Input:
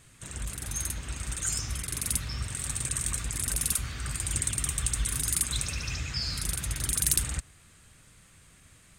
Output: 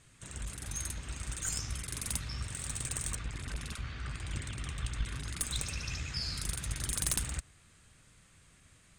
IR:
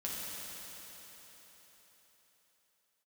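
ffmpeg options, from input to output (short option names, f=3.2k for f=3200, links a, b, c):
-af "asetnsamples=n=441:p=0,asendcmd='3.15 lowpass f 3700;5.4 lowpass f 9600',lowpass=9.5k,aeval=exprs='(tanh(5.62*val(0)+0.75)-tanh(0.75))/5.62':c=same"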